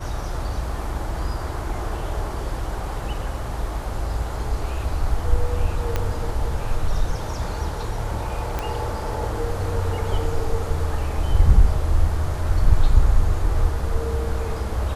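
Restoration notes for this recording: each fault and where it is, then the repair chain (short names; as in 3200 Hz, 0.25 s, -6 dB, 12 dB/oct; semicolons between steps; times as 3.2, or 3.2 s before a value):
5.96 pop -9 dBFS
8.59 pop -12 dBFS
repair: de-click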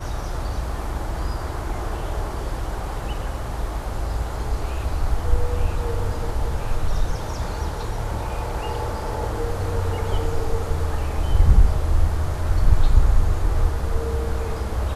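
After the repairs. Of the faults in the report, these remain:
5.96 pop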